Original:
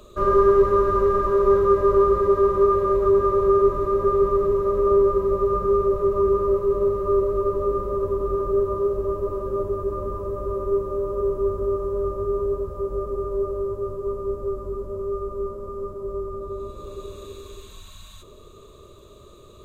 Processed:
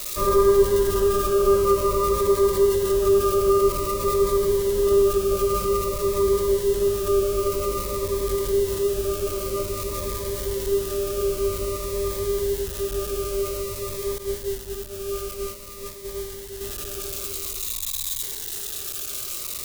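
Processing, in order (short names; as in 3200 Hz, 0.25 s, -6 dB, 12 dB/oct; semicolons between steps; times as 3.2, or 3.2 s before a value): switching spikes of -18.5 dBFS; 14.18–16.61 expander -24 dBFS; cascading phaser falling 0.51 Hz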